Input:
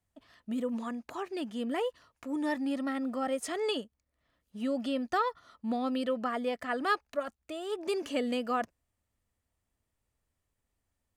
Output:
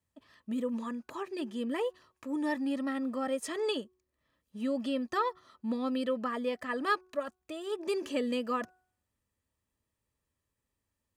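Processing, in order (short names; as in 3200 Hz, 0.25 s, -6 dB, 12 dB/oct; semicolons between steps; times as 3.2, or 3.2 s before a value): notch comb 720 Hz; de-hum 368.8 Hz, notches 4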